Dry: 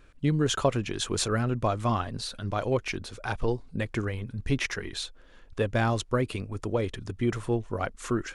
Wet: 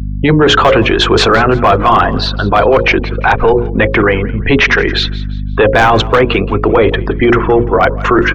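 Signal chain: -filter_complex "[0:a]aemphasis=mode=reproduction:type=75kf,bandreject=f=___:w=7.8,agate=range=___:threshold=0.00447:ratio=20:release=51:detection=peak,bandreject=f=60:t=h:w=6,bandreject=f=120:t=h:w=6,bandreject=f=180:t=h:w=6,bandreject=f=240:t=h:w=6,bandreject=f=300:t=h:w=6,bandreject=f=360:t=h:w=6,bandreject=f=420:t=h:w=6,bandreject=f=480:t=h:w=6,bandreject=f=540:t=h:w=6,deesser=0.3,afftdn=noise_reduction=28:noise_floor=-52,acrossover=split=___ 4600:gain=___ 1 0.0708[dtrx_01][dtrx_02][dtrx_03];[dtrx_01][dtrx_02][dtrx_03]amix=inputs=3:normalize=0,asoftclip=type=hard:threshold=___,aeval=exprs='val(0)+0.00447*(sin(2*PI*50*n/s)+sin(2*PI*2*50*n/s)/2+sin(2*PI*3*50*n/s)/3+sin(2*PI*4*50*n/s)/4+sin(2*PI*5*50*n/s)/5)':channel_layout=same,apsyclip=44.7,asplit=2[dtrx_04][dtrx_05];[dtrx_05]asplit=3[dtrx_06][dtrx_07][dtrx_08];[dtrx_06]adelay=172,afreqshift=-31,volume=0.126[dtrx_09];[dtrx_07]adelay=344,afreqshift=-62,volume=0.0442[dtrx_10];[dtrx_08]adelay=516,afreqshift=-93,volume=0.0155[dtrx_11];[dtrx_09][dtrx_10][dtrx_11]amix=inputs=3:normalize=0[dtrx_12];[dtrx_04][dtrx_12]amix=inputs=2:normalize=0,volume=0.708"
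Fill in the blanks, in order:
590, 0.447, 340, 0.2, 0.0944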